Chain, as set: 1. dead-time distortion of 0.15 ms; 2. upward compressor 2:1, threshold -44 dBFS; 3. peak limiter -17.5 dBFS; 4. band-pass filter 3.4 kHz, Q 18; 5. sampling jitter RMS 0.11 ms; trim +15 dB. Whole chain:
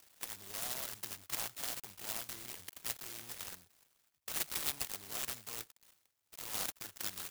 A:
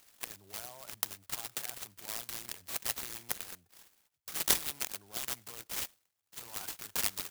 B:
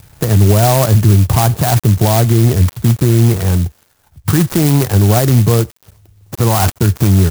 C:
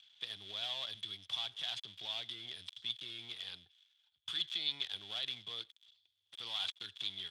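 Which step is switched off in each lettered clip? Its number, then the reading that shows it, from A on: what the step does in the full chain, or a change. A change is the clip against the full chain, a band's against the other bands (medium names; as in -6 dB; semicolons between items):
1, distortion -15 dB; 4, 125 Hz band +26.0 dB; 5, 8 kHz band -15.0 dB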